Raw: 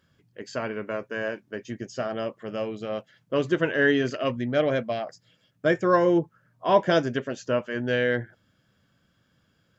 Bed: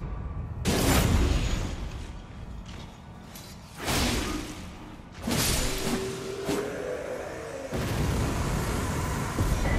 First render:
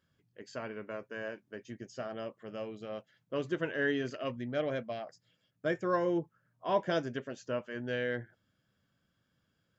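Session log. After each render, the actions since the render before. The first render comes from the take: gain -10 dB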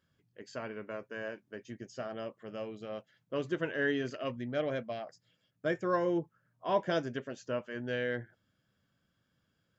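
nothing audible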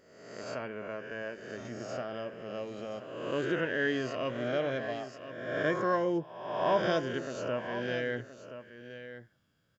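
spectral swells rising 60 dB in 1.06 s; echo 1.024 s -12 dB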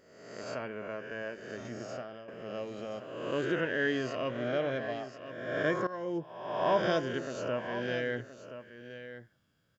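1.76–2.28 fade out, to -12.5 dB; 4.21–5.26 air absorption 57 m; 5.87–6.32 fade in, from -18 dB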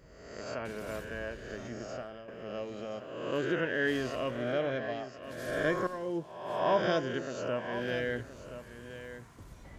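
add bed -24.5 dB

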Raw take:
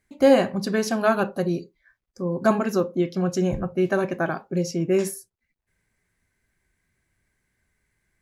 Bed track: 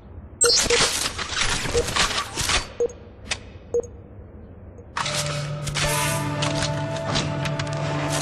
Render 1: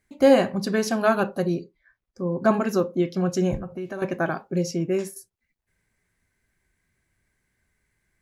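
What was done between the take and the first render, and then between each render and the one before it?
1.54–2.54 LPF 3200 Hz 6 dB/oct; 3.57–4.02 compressor 3:1, threshold -32 dBFS; 4.75–5.16 fade out, to -10.5 dB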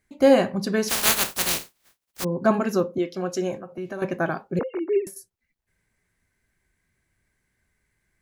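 0.88–2.23 spectral contrast lowered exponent 0.12; 2.98–3.78 HPF 300 Hz; 4.59–5.07 sine-wave speech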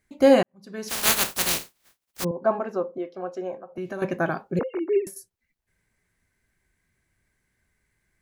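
0.43–1.11 fade in quadratic; 2.31–3.76 band-pass 730 Hz, Q 1.2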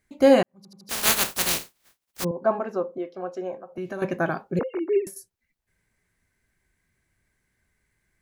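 0.57 stutter in place 0.08 s, 4 plays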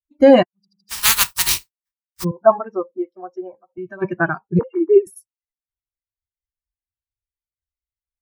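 per-bin expansion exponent 2; maximiser +12 dB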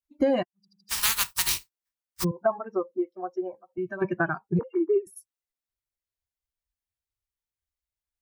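compressor 4:1, threshold -23 dBFS, peak gain reduction 15 dB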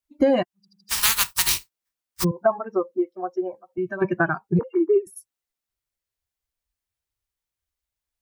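gain +4.5 dB

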